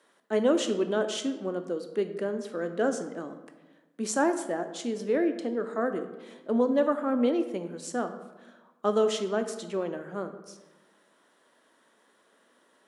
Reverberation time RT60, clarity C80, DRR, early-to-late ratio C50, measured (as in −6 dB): 1.1 s, 12.0 dB, 7.5 dB, 10.0 dB